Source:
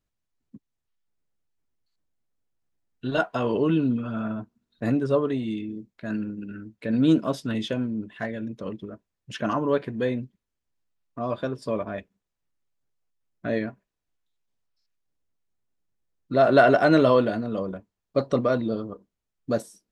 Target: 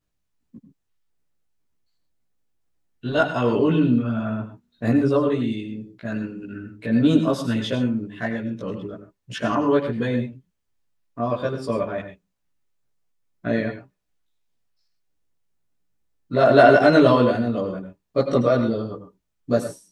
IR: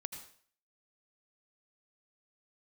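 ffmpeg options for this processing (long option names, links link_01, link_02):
-filter_complex "[0:a]asplit=2[link_01][link_02];[1:a]atrim=start_sample=2205,atrim=end_sample=6174,adelay=17[link_03];[link_02][link_03]afir=irnorm=-1:irlink=0,volume=6dB[link_04];[link_01][link_04]amix=inputs=2:normalize=0,volume=-1dB"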